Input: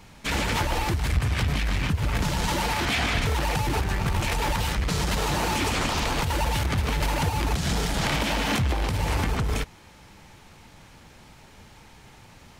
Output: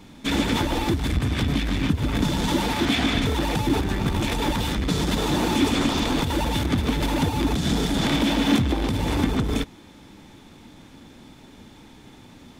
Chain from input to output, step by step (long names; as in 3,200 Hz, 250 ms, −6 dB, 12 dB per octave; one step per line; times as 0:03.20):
hollow resonant body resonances 270/3,500 Hz, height 14 dB, ringing for 25 ms
level −1.5 dB